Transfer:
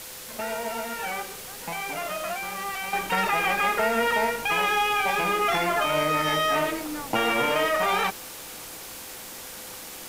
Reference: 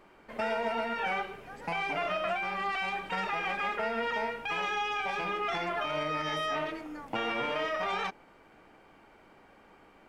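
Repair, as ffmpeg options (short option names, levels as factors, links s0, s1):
-af "bandreject=f=510:w=30,afwtdn=0.011,asetnsamples=n=441:p=0,asendcmd='2.93 volume volume -8.5dB',volume=1"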